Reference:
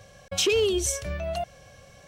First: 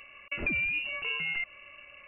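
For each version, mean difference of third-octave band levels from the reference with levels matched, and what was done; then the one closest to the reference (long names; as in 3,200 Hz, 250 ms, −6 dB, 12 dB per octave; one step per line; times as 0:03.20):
12.5 dB: voice inversion scrambler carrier 2,800 Hz
downward compressor 3 to 1, threshold −30 dBFS, peak gain reduction 8 dB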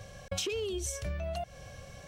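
6.5 dB: low-shelf EQ 130 Hz +6.5 dB
downward compressor 10 to 1, threshold −33 dBFS, peak gain reduction 14 dB
level +1 dB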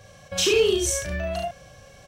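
2.5 dB: dynamic equaliser 1,700 Hz, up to +4 dB, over −53 dBFS, Q 4.2
on a send: ambience of single reflections 38 ms −3 dB, 71 ms −5 dB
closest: third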